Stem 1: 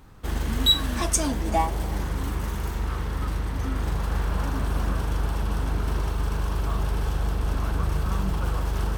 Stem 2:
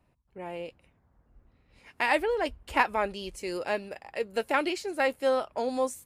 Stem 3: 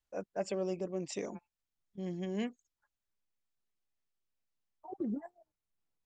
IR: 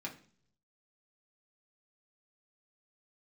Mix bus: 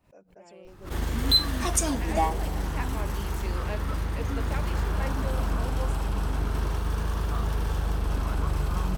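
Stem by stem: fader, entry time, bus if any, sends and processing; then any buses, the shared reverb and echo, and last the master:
−1.5 dB, 0.65 s, no send, pitch vibrato 0.34 Hz 75 cents
−11.5 dB, 0.00 s, no send, speech leveller
−12.5 dB, 0.00 s, send −19.5 dB, brickwall limiter −31.5 dBFS, peak gain reduction 8 dB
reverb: on, RT60 0.50 s, pre-delay 3 ms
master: mains-hum notches 60/120/180 Hz; background raised ahead of every attack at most 140 dB per second

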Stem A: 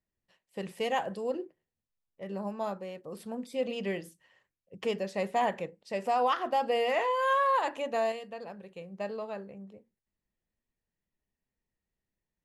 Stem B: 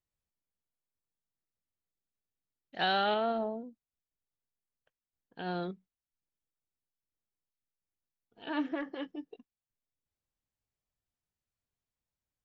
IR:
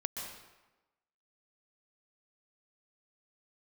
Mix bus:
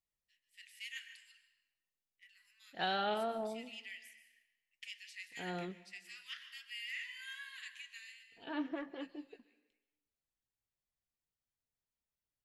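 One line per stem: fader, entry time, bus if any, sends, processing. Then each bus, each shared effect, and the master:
0:07.87 −6 dB → 0:08.31 −13.5 dB, 0.00 s, send −3 dB, Butterworth high-pass 1,800 Hz 48 dB per octave
−2.5 dB, 0.00 s, send −17.5 dB, no processing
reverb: on, RT60 1.1 s, pre-delay 117 ms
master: flanger 1 Hz, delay 4.2 ms, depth 3.6 ms, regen −71%

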